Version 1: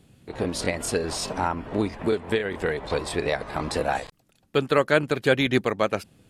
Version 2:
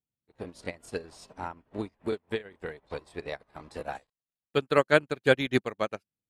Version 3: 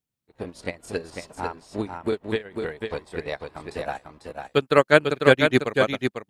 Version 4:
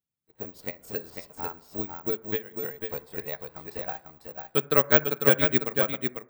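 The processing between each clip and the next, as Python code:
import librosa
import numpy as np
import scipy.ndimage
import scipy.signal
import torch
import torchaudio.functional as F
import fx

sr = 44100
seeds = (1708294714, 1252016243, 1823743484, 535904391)

y1 = fx.upward_expand(x, sr, threshold_db=-43.0, expansion=2.5)
y2 = y1 + 10.0 ** (-5.5 / 20.0) * np.pad(y1, (int(497 * sr / 1000.0), 0))[:len(y1)]
y2 = F.gain(torch.from_numpy(y2), 5.5).numpy()
y3 = (np.kron(scipy.signal.resample_poly(y2, 1, 2), np.eye(2)[0]) * 2)[:len(y2)]
y3 = fx.rev_fdn(y3, sr, rt60_s=0.8, lf_ratio=1.0, hf_ratio=0.3, size_ms=40.0, drr_db=16.0)
y3 = F.gain(torch.from_numpy(y3), -7.0).numpy()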